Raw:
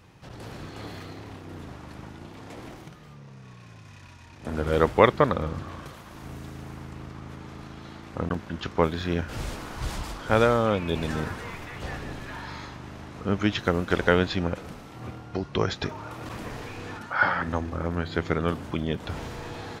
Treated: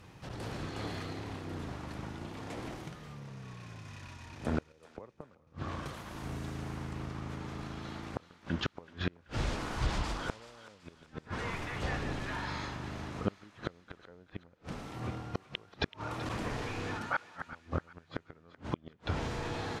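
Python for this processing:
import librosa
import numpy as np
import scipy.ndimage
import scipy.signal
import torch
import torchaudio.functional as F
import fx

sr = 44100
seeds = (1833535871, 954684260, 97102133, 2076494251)

p1 = fx.env_lowpass_down(x, sr, base_hz=990.0, full_db=-18.5)
p2 = fx.gate_flip(p1, sr, shuts_db=-18.0, range_db=-34)
p3 = p2 + fx.echo_thinned(p2, sr, ms=381, feedback_pct=45, hz=1100.0, wet_db=-13.5, dry=0)
y = fx.band_widen(p3, sr, depth_pct=70, at=(4.72, 5.47))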